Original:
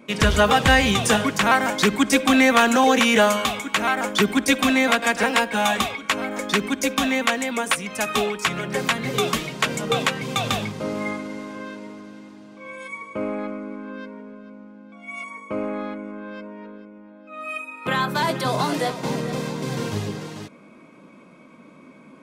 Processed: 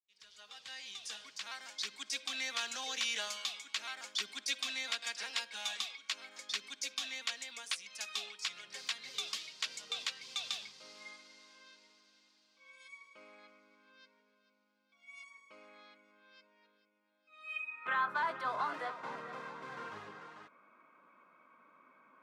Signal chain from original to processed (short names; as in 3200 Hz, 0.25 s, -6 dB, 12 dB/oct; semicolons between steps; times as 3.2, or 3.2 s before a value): opening faded in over 2.87 s; band-pass sweep 4700 Hz -> 1300 Hz, 17.35–17.98; gain -5.5 dB